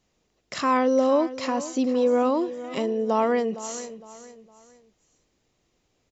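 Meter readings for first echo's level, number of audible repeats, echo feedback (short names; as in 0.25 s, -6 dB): -14.5 dB, 3, 35%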